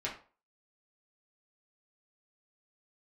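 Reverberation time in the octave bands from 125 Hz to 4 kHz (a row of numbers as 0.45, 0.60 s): 0.35, 0.35, 0.40, 0.40, 0.30, 0.30 s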